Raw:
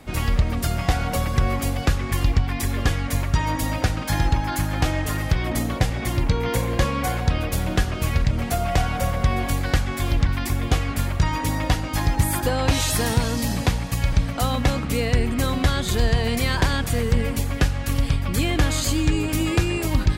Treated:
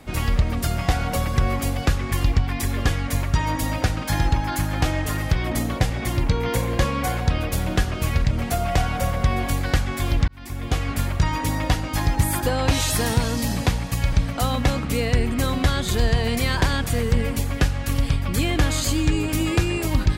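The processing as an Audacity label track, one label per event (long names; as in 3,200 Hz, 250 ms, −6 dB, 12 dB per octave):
10.280000	10.890000	fade in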